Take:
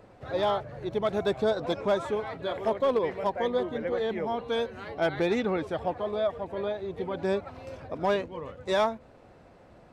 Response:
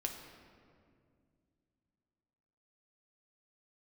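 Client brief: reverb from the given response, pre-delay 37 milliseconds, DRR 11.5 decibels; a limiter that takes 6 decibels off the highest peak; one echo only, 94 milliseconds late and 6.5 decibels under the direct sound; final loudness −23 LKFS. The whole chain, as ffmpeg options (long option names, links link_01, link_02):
-filter_complex "[0:a]alimiter=limit=-24dB:level=0:latency=1,aecho=1:1:94:0.473,asplit=2[link_01][link_02];[1:a]atrim=start_sample=2205,adelay=37[link_03];[link_02][link_03]afir=irnorm=-1:irlink=0,volume=-12dB[link_04];[link_01][link_04]amix=inputs=2:normalize=0,volume=9.5dB"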